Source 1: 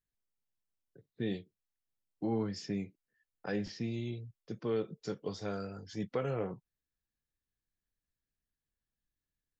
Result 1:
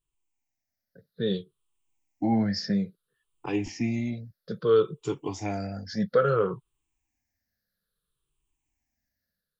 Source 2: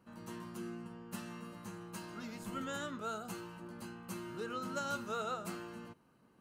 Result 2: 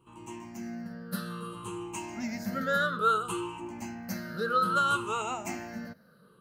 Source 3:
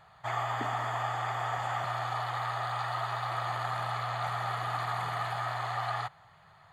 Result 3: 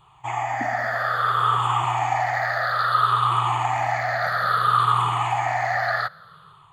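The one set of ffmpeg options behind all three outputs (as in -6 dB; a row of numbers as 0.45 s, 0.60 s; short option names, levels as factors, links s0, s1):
-af "afftfilt=real='re*pow(10,18/40*sin(2*PI*(0.66*log(max(b,1)*sr/1024/100)/log(2)-(-0.6)*(pts-256)/sr)))':imag='im*pow(10,18/40*sin(2*PI*(0.66*log(max(b,1)*sr/1024/100)/log(2)-(-0.6)*(pts-256)/sr)))':win_size=1024:overlap=0.75,dynaudnorm=f=580:g=3:m=1.78,adynamicequalizer=threshold=0.0178:dfrequency=1400:dqfactor=1.3:tfrequency=1400:tqfactor=1.3:attack=5:release=100:ratio=0.375:range=2.5:mode=boostabove:tftype=bell"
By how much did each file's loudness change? +10.5 LU, +11.5 LU, +11.5 LU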